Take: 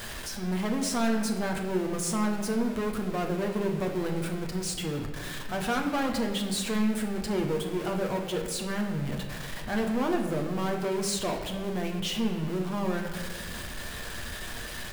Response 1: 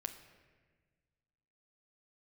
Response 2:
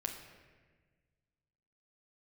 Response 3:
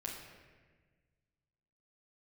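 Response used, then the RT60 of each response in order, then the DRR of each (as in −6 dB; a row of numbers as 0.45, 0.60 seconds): 2; 1.5, 1.4, 1.4 seconds; 6.0, 1.5, −4.5 decibels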